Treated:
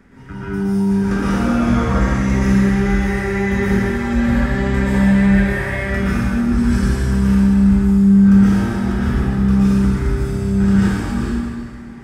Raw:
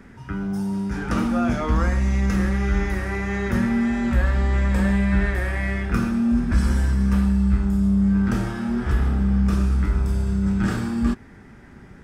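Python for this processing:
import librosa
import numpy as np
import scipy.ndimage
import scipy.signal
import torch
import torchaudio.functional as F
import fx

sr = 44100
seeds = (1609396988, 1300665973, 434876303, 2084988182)

y = fx.rev_plate(x, sr, seeds[0], rt60_s=1.9, hf_ratio=0.95, predelay_ms=105, drr_db=-9.0)
y = y * librosa.db_to_amplitude(-4.0)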